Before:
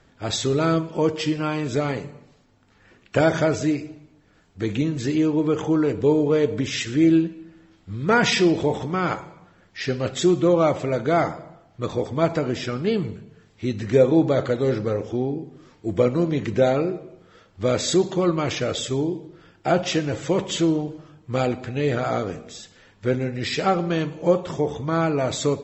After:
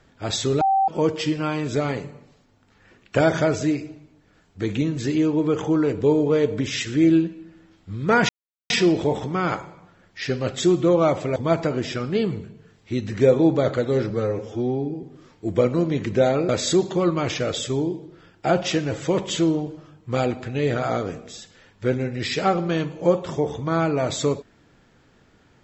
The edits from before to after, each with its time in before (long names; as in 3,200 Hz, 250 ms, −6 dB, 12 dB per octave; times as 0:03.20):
0:00.61–0:00.88: beep over 776 Hz −15.5 dBFS
0:08.29: splice in silence 0.41 s
0:10.95–0:12.08: remove
0:14.82–0:15.44: time-stretch 1.5×
0:16.90–0:17.70: remove